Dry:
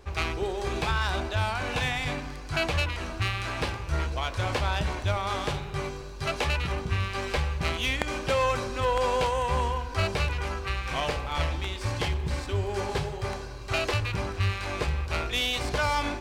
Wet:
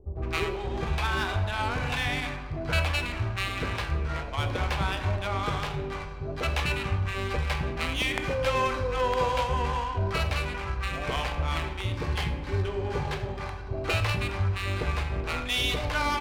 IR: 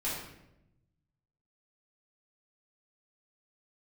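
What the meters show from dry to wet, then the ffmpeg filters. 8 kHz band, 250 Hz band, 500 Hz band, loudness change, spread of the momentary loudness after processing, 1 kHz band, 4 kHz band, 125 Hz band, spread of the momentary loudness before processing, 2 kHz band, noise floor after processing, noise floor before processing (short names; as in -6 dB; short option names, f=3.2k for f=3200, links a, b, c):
-2.5 dB, +0.5 dB, -1.0 dB, 0.0 dB, 6 LU, -0.5 dB, -0.5 dB, +0.5 dB, 5 LU, 0.0 dB, -36 dBFS, -38 dBFS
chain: -filter_complex "[0:a]adynamicsmooth=sensitivity=6.5:basefreq=1.9k,acrossover=split=610[a][b];[b]adelay=160[c];[a][c]amix=inputs=2:normalize=0,asplit=2[d][e];[1:a]atrim=start_sample=2205,adelay=23[f];[e][f]afir=irnorm=-1:irlink=0,volume=-13.5dB[g];[d][g]amix=inputs=2:normalize=0"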